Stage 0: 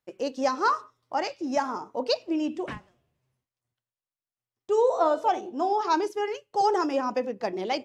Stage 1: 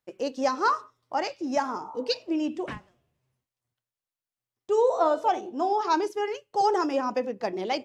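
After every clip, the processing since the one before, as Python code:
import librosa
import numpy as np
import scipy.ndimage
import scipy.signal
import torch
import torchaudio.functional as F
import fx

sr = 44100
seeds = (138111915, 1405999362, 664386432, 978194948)

y = fx.spec_repair(x, sr, seeds[0], start_s=1.87, length_s=0.27, low_hz=530.0, high_hz=1400.0, source='both')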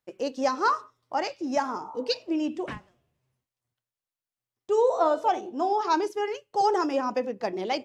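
y = x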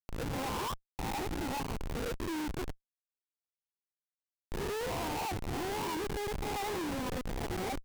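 y = fx.spec_swells(x, sr, rise_s=1.08)
y = fx.fixed_phaser(y, sr, hz=900.0, stages=8)
y = fx.schmitt(y, sr, flips_db=-26.5)
y = y * librosa.db_to_amplitude(-8.0)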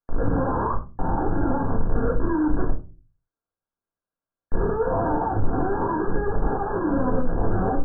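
y = fx.brickwall_lowpass(x, sr, high_hz=1700.0)
y = fx.room_shoebox(y, sr, seeds[1], volume_m3=120.0, walls='furnished', distance_m=1.7)
y = y * librosa.db_to_amplitude(7.5)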